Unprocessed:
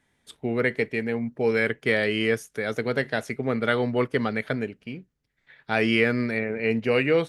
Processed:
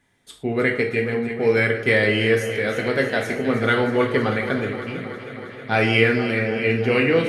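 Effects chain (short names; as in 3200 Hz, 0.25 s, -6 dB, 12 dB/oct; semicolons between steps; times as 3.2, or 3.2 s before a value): echo with dull and thin repeats by turns 0.159 s, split 1500 Hz, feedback 86%, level -10 dB; non-linear reverb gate 0.14 s falling, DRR 1.5 dB; gain +2 dB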